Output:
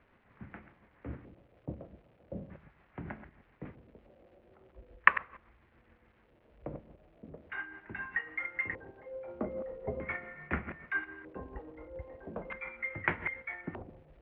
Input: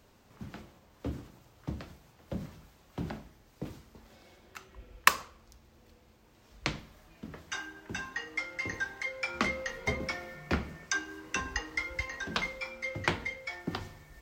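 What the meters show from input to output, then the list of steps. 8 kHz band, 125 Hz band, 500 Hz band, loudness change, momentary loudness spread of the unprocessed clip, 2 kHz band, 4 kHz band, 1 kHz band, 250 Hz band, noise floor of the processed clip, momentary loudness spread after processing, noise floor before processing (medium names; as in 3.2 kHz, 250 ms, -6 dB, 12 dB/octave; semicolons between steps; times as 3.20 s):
under -35 dB, -5.0 dB, -1.0 dB, -2.0 dB, 17 LU, -1.0 dB, -18.5 dB, -2.5 dB, -4.5 dB, -67 dBFS, 18 LU, -62 dBFS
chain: chunks repeated in reverse 122 ms, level -11 dB; tremolo 7.1 Hz, depth 43%; LFO low-pass square 0.4 Hz 570–2000 Hz; crackle 450 per s -49 dBFS; low-pass 2.6 kHz 24 dB/octave; trim -4 dB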